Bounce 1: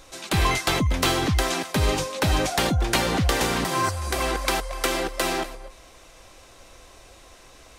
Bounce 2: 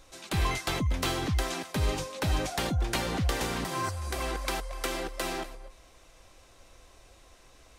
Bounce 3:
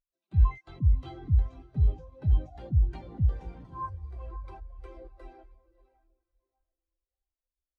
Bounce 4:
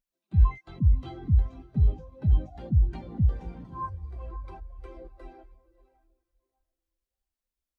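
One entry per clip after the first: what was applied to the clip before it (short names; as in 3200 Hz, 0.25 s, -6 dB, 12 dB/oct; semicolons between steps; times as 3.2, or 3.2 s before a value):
low shelf 130 Hz +4.5 dB; gain -8.5 dB
diffused feedback echo 0.593 s, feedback 48%, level -7.5 dB; spectral expander 2.5:1; gain +4.5 dB
bell 210 Hz +8.5 dB 0.63 oct; gain +1.5 dB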